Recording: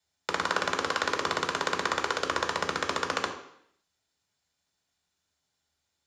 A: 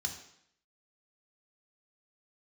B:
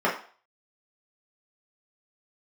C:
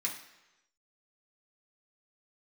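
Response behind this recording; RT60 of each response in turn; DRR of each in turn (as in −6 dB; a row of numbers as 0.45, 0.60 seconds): A; 0.70, 0.45, 1.0 seconds; 2.5, −6.5, −3.5 decibels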